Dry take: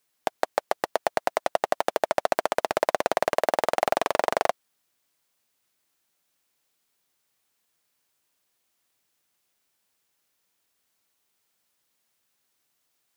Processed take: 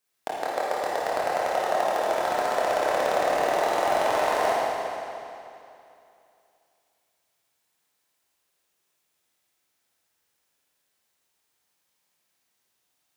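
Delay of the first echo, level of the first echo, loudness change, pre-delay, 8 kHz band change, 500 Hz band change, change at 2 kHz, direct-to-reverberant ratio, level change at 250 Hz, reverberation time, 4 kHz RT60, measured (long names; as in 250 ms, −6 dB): no echo audible, no echo audible, +1.0 dB, 23 ms, +0.5 dB, +1.5 dB, +1.5 dB, −8.0 dB, +1.0 dB, 2.7 s, 2.5 s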